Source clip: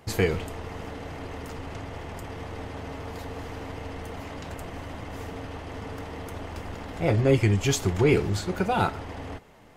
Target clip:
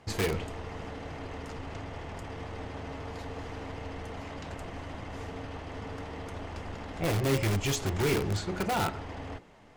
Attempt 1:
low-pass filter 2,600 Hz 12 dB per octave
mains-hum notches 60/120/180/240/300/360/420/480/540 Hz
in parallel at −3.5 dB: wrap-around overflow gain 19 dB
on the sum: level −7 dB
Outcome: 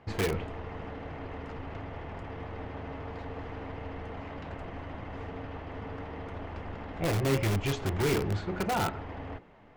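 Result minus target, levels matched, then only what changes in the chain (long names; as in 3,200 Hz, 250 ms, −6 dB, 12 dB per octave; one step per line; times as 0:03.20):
8,000 Hz band −4.0 dB
change: low-pass filter 7,900 Hz 12 dB per octave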